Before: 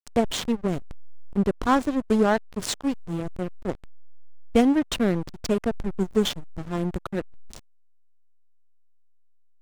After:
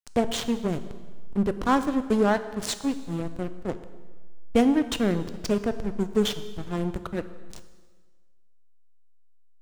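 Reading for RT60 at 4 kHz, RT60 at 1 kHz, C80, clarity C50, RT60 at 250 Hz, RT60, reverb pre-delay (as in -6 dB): 1.4 s, 1.5 s, 14.0 dB, 12.5 dB, 1.5 s, 1.5 s, 4 ms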